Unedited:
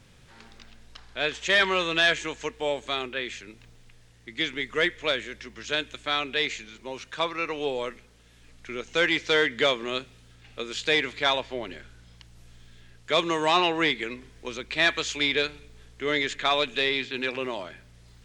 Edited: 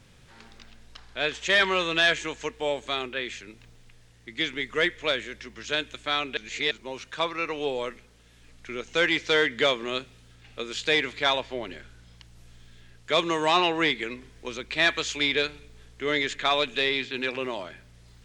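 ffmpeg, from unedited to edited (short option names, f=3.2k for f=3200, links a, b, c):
-filter_complex "[0:a]asplit=3[a][b][c];[a]atrim=end=6.372[d];[b]atrim=start=6.368:end=6.712,asetpts=PTS-STARTPTS,areverse[e];[c]atrim=start=6.708[f];[d][e]acrossfade=d=0.004:c1=hsin:c2=hsin[g];[g][f]acrossfade=d=0.004:c1=hsin:c2=hsin"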